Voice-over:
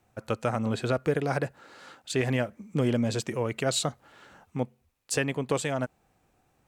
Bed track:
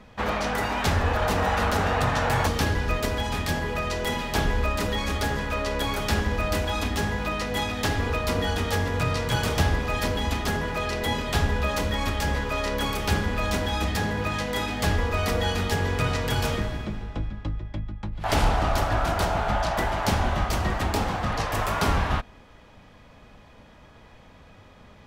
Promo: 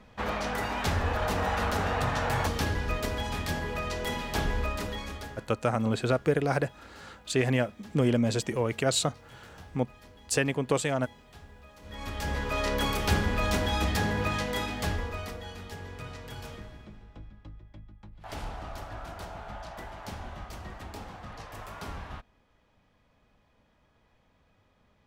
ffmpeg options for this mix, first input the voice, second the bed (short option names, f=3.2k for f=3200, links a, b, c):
-filter_complex "[0:a]adelay=5200,volume=1dB[a];[1:a]volume=20.5dB,afade=t=out:st=4.58:d=0.92:silence=0.0794328,afade=t=in:st=11.81:d=0.85:silence=0.0530884,afade=t=out:st=14.27:d=1.12:silence=0.177828[b];[a][b]amix=inputs=2:normalize=0"